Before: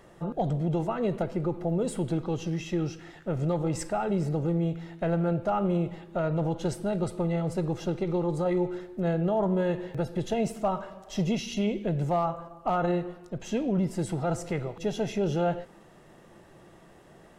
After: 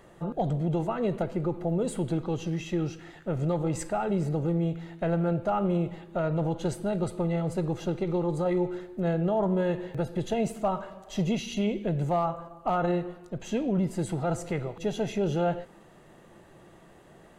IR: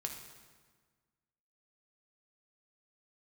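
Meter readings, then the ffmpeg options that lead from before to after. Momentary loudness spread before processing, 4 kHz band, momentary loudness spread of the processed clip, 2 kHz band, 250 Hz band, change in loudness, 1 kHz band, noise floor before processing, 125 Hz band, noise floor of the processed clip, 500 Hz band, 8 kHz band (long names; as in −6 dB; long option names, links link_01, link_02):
6 LU, −0.5 dB, 6 LU, 0.0 dB, 0.0 dB, 0.0 dB, 0.0 dB, −54 dBFS, 0.0 dB, −54 dBFS, 0.0 dB, −0.5 dB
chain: -af "bandreject=frequency=5400:width=8.8"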